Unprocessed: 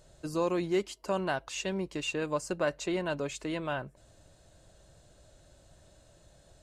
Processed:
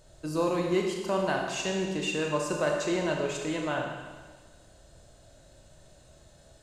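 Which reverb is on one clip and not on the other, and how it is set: Schroeder reverb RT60 1.4 s, combs from 26 ms, DRR 0.5 dB; gain +1 dB

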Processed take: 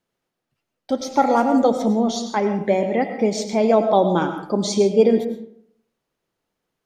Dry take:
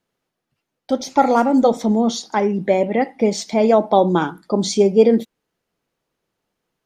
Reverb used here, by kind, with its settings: digital reverb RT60 0.69 s, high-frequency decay 0.55×, pre-delay 65 ms, DRR 8 dB; gain -2.5 dB

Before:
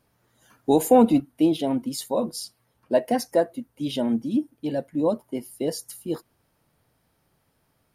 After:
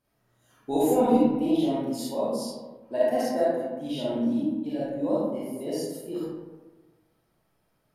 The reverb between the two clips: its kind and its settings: digital reverb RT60 1.3 s, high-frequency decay 0.45×, pre-delay 5 ms, DRR -9 dB; gain -12 dB

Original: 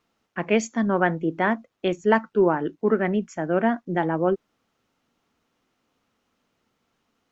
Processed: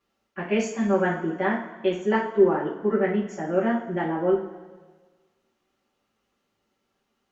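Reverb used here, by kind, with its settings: two-slope reverb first 0.35 s, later 1.5 s, from -15 dB, DRR -6 dB; gain -9 dB

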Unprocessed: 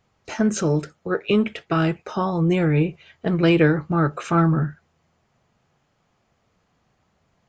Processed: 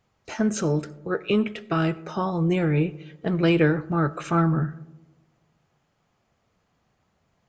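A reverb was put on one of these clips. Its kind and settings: digital reverb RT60 1.2 s, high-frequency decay 0.25×, pre-delay 40 ms, DRR 20 dB; gain -3 dB

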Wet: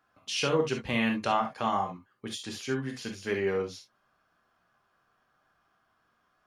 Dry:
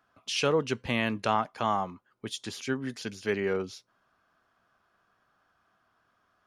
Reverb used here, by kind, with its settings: non-linear reverb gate 90 ms flat, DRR 2 dB; gain -2.5 dB

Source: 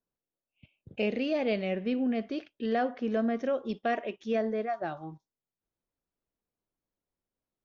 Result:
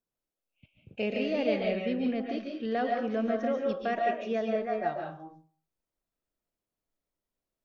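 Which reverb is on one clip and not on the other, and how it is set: digital reverb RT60 0.44 s, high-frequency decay 0.65×, pre-delay 0.1 s, DRR 0.5 dB; gain -2 dB

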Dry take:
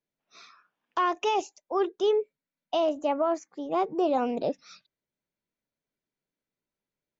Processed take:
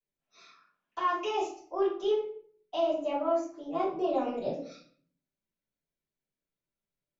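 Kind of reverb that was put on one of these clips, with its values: shoebox room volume 58 m³, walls mixed, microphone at 3.1 m; gain -18 dB

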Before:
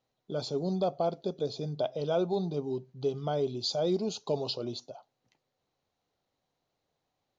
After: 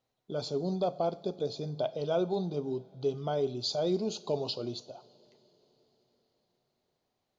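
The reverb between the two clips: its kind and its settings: two-slope reverb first 0.49 s, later 4.8 s, from -18 dB, DRR 14 dB; gain -1 dB

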